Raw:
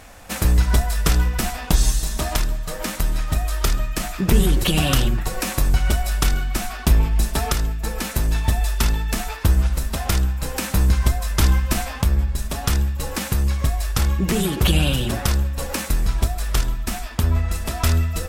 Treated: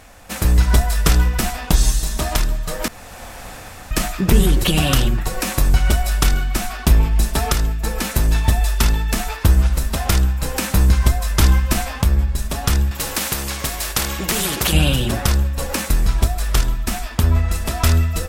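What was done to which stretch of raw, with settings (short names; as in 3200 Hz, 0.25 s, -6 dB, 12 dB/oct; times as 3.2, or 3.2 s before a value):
2.88–3.91 room tone
12.91–14.73 spectral compressor 2:1
whole clip: AGC; gain -1 dB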